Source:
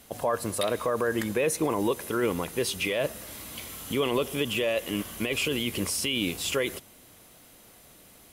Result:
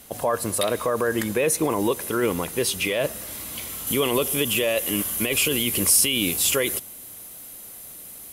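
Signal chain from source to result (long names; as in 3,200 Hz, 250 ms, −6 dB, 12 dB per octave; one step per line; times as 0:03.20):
parametric band 12,000 Hz +5.5 dB 1.2 octaves, from 0:03.87 +14 dB
level +3.5 dB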